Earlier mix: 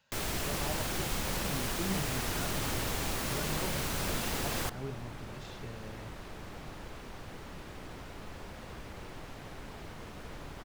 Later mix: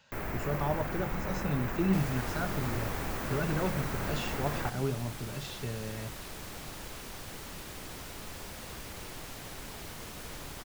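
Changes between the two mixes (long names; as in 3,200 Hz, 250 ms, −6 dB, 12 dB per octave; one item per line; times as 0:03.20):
speech +8.5 dB
first sound: add flat-topped bell 6,100 Hz −16 dB 2.4 octaves
second sound: remove low-pass filter 1,900 Hz 6 dB per octave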